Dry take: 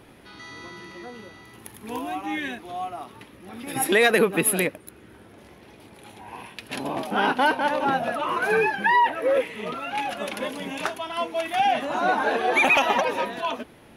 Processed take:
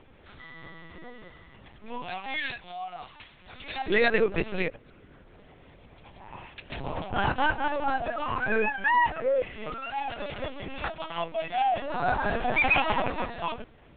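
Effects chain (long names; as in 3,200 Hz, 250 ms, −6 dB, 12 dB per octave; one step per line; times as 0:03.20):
0:02.02–0:03.83: spectral tilt +4.5 dB per octave
linear-prediction vocoder at 8 kHz pitch kept
level −4 dB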